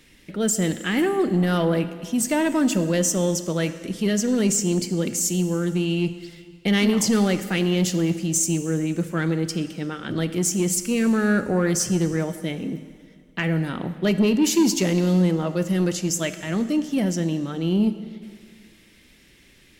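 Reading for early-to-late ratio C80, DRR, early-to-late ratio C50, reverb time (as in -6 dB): 13.0 dB, 10.5 dB, 12.0 dB, 2.0 s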